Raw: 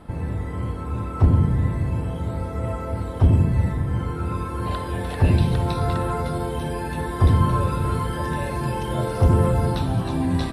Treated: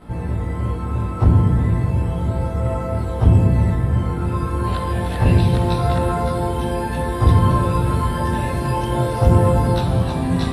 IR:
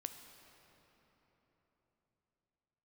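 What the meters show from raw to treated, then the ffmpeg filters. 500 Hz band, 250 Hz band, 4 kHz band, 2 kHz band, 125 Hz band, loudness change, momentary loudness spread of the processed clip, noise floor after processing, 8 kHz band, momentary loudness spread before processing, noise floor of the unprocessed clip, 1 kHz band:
+4.5 dB, +4.0 dB, +3.5 dB, +3.0 dB, +4.0 dB, +4.0 dB, 8 LU, −25 dBFS, +3.5 dB, 10 LU, −30 dBFS, +4.5 dB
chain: -filter_complex "[0:a]asplit=2[link_01][link_02];[1:a]atrim=start_sample=2205,adelay=17[link_03];[link_02][link_03]afir=irnorm=-1:irlink=0,volume=7.5dB[link_04];[link_01][link_04]amix=inputs=2:normalize=0,volume=-2dB"

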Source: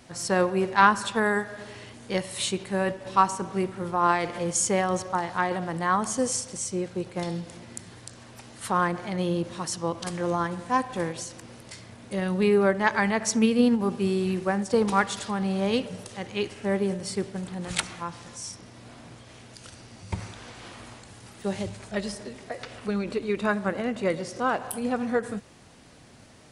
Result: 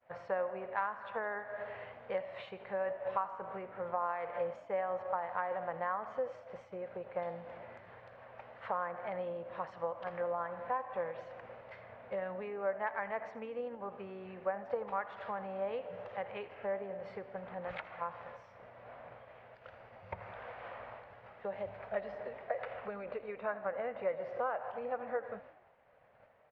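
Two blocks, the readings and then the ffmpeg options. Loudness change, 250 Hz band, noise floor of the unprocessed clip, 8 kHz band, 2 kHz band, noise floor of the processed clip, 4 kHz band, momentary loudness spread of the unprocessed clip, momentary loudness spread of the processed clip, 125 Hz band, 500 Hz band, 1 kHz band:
−13.0 dB, −24.0 dB, −49 dBFS, below −40 dB, −13.5 dB, −58 dBFS, −25.0 dB, 20 LU, 15 LU, −22.0 dB, −9.0 dB, −11.5 dB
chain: -filter_complex "[0:a]acompressor=threshold=-32dB:ratio=6,lowpass=frequency=2200:width=0.5412,lowpass=frequency=2200:width=1.3066,agate=range=-33dB:threshold=-45dB:ratio=3:detection=peak,lowshelf=frequency=410:width_type=q:width=3:gain=-10,asplit=2[link_01][link_02];[link_02]asplit=6[link_03][link_04][link_05][link_06][link_07][link_08];[link_03]adelay=81,afreqshift=53,volume=-18dB[link_09];[link_04]adelay=162,afreqshift=106,volume=-22.3dB[link_10];[link_05]adelay=243,afreqshift=159,volume=-26.6dB[link_11];[link_06]adelay=324,afreqshift=212,volume=-30.9dB[link_12];[link_07]adelay=405,afreqshift=265,volume=-35.2dB[link_13];[link_08]adelay=486,afreqshift=318,volume=-39.5dB[link_14];[link_09][link_10][link_11][link_12][link_13][link_14]amix=inputs=6:normalize=0[link_15];[link_01][link_15]amix=inputs=2:normalize=0,volume=-2.5dB"

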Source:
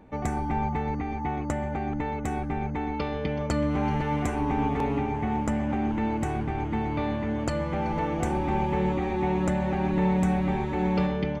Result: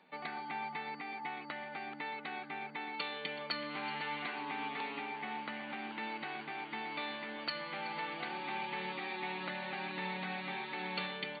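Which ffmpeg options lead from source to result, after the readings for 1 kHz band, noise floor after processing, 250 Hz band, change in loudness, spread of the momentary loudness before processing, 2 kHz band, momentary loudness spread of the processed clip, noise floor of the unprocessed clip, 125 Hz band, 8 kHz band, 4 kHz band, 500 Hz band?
−10.0 dB, −48 dBFS, −20.5 dB, −12.0 dB, 5 LU, −1.5 dB, 4 LU, −31 dBFS, −25.5 dB, below −35 dB, +3.5 dB, −16.0 dB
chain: -filter_complex "[0:a]aderivative,aeval=exprs='val(0)+0.000126*(sin(2*PI*60*n/s)+sin(2*PI*2*60*n/s)/2+sin(2*PI*3*60*n/s)/3+sin(2*PI*4*60*n/s)/4+sin(2*PI*5*60*n/s)/5)':channel_layout=same,acrossover=split=330|890|1500[link_01][link_02][link_03][link_04];[link_02]alimiter=level_in=27.5dB:limit=-24dB:level=0:latency=1:release=446,volume=-27.5dB[link_05];[link_01][link_05][link_03][link_04]amix=inputs=4:normalize=0,afftfilt=real='re*between(b*sr/4096,140,4600)':imag='im*between(b*sr/4096,140,4600)':win_size=4096:overlap=0.75,volume=10dB"

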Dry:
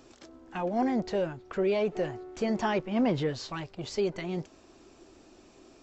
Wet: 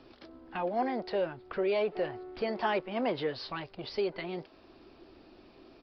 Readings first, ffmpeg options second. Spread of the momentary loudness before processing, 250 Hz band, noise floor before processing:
10 LU, −7.5 dB, −58 dBFS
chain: -filter_complex "[0:a]acrossover=split=330|1700[link_01][link_02][link_03];[link_01]acompressor=threshold=-46dB:ratio=5[link_04];[link_04][link_02][link_03]amix=inputs=3:normalize=0,aresample=11025,aresample=44100"

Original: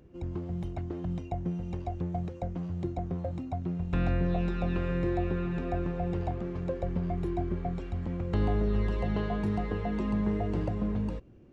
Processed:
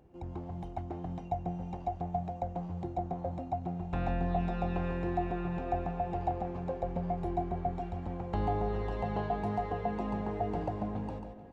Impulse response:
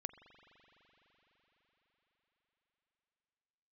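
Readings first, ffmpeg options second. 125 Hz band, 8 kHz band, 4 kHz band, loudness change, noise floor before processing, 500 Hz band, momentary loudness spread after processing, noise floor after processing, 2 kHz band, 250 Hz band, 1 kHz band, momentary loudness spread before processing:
−5.0 dB, can't be measured, −5.0 dB, −3.0 dB, −43 dBFS, −1.0 dB, 7 LU, −44 dBFS, −3.5 dB, −5.0 dB, +5.0 dB, 7 LU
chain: -filter_complex "[0:a]equalizer=frequency=800:width_type=o:width=0.6:gain=14,aecho=1:1:429|858|1287|1716|2145:0.126|0.0705|0.0395|0.0221|0.0124,asplit=2[link_01][link_02];[1:a]atrim=start_sample=2205,adelay=142[link_03];[link_02][link_03]afir=irnorm=-1:irlink=0,volume=-3.5dB[link_04];[link_01][link_04]amix=inputs=2:normalize=0,volume=-6dB"

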